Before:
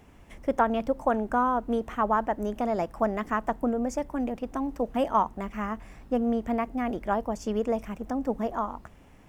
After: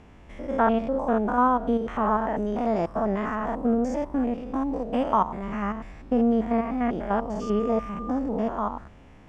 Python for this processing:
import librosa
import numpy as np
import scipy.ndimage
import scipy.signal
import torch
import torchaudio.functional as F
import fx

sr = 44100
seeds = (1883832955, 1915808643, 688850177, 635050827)

y = fx.spec_steps(x, sr, hold_ms=100)
y = fx.dmg_tone(y, sr, hz=1200.0, level_db=-41.0, at=(7.41, 8.1), fade=0.02)
y = fx.air_absorb(y, sr, metres=78.0)
y = F.gain(torch.from_numpy(y), 5.5).numpy()